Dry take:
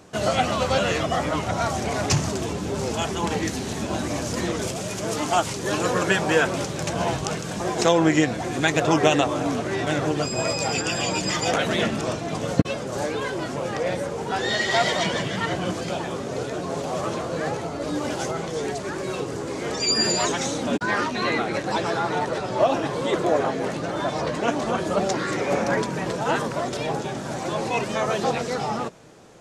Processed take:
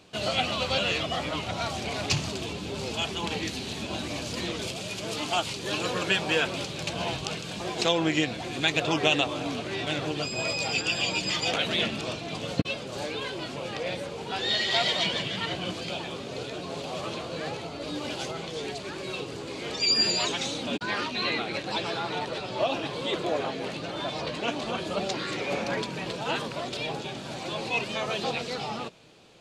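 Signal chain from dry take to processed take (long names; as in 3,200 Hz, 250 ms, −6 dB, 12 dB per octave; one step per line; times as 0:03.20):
flat-topped bell 3,300 Hz +10 dB 1.2 octaves
level −7.5 dB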